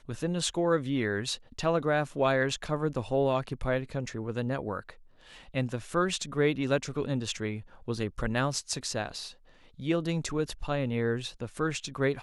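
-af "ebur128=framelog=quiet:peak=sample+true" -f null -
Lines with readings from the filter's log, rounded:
Integrated loudness:
  I:         -30.7 LUFS
  Threshold: -41.0 LUFS
Loudness range:
  LRA:         3.8 LU
  Threshold: -51.2 LUFS
  LRA low:   -32.8 LUFS
  LRA high:  -29.1 LUFS
Sample peak:
  Peak:      -12.6 dBFS
True peak:
  Peak:      -12.5 dBFS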